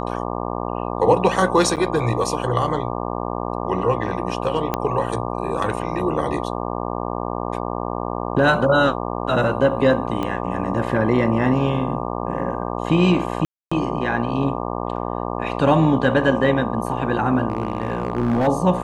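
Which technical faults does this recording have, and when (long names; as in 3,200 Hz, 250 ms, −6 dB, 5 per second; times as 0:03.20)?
mains buzz 60 Hz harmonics 20 −26 dBFS
0:01.76–0:01.77: drop-out 8.5 ms
0:04.74: click −7 dBFS
0:10.23: click −13 dBFS
0:13.45–0:13.71: drop-out 265 ms
0:17.48–0:18.48: clipping −15 dBFS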